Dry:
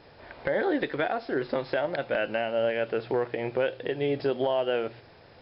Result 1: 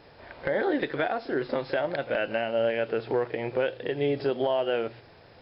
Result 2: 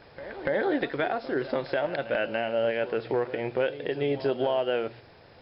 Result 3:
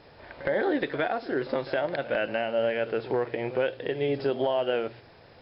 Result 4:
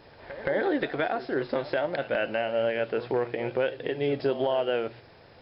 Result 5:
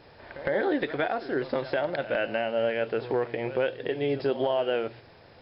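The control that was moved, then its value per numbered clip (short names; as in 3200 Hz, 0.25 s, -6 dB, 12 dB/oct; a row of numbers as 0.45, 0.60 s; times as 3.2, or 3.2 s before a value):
pre-echo, time: 35, 288, 65, 173, 109 ms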